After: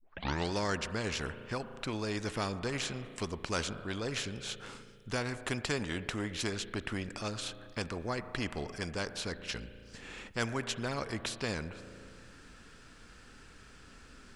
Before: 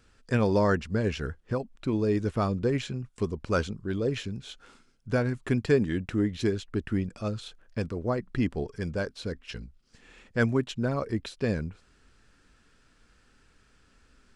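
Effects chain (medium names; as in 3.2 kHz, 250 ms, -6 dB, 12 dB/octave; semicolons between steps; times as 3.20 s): tape start-up on the opening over 0.52 s; spring tank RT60 2.1 s, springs 35 ms, chirp 45 ms, DRR 19.5 dB; spectrum-flattening compressor 2:1; trim -6 dB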